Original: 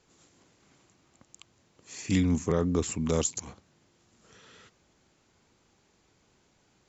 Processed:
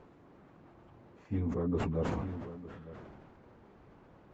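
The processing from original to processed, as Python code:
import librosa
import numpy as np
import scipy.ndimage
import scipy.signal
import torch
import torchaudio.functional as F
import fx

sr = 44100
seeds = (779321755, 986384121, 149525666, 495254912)

y = fx.delta_mod(x, sr, bps=64000, step_db=-43.0)
y = scipy.signal.sosfilt(scipy.signal.butter(2, 1100.0, 'lowpass', fs=sr, output='sos'), y)
y = fx.stretch_vocoder_free(y, sr, factor=0.63)
y = y + 10.0 ** (-16.5 / 20.0) * np.pad(y, (int(905 * sr / 1000.0), 0))[:len(y)]
y = fx.sustainer(y, sr, db_per_s=27.0)
y = F.gain(torch.from_numpy(y), -3.0).numpy()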